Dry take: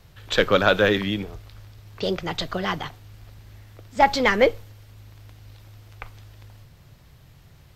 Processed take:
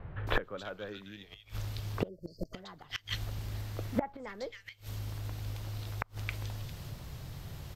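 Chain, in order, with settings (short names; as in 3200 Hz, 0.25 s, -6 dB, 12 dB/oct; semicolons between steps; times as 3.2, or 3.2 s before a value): bands offset in time lows, highs 0.27 s, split 2000 Hz; spectral delete 2.08–2.54, 660–4200 Hz; flipped gate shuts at -22 dBFS, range -30 dB; gain +7 dB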